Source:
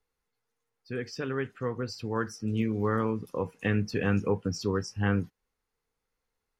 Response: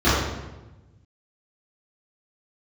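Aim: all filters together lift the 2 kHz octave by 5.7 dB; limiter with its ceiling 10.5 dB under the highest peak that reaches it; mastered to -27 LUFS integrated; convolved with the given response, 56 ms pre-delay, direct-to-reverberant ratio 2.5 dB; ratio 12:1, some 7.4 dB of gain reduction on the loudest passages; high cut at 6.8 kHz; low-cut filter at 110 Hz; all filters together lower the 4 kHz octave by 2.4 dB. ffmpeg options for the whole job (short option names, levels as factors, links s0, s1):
-filter_complex "[0:a]highpass=110,lowpass=6800,equalizer=f=2000:t=o:g=8.5,equalizer=f=4000:t=o:g=-5,acompressor=threshold=0.0398:ratio=12,alimiter=level_in=1.33:limit=0.0631:level=0:latency=1,volume=0.75,asplit=2[s0][s1];[1:a]atrim=start_sample=2205,adelay=56[s2];[s1][s2]afir=irnorm=-1:irlink=0,volume=0.0596[s3];[s0][s3]amix=inputs=2:normalize=0,volume=2.24"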